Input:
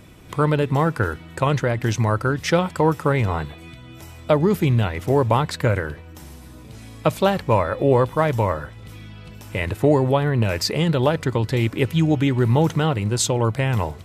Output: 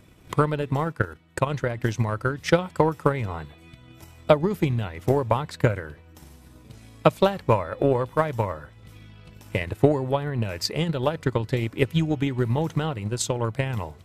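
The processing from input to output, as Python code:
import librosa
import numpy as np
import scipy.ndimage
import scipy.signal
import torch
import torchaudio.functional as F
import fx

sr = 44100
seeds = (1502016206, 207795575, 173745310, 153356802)

y = fx.transient(x, sr, attack_db=11, sustain_db=-1)
y = fx.level_steps(y, sr, step_db=10, at=(0.91, 1.49), fade=0.02)
y = y * 10.0 ** (-8.5 / 20.0)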